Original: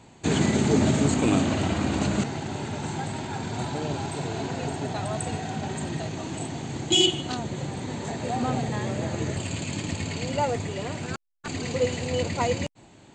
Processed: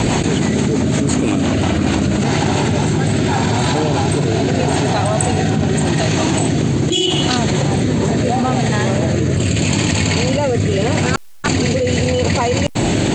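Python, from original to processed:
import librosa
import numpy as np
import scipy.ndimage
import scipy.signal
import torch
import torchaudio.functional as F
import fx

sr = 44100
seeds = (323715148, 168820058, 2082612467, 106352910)

y = fx.rotary_switch(x, sr, hz=6.0, then_hz=0.8, switch_at_s=1.39)
y = fx.env_flatten(y, sr, amount_pct=100)
y = y * 10.0 ** (4.0 / 20.0)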